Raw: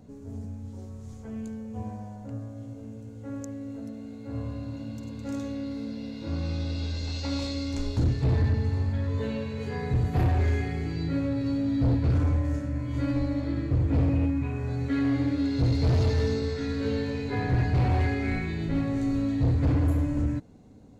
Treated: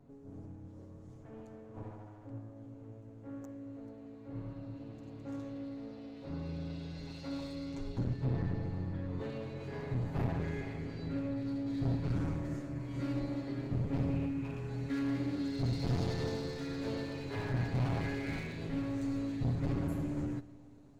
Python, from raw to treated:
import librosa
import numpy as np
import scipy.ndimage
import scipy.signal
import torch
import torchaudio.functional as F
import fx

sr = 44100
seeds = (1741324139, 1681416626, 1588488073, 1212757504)

y = fx.lower_of_two(x, sr, delay_ms=7.3)
y = fx.high_shelf(y, sr, hz=3500.0, db=fx.steps((0.0, -11.5), (9.19, -5.5), (11.66, 2.5)))
y = fx.rev_freeverb(y, sr, rt60_s=3.0, hf_ratio=0.85, predelay_ms=5, drr_db=17.0)
y = F.gain(torch.from_numpy(y), -8.0).numpy()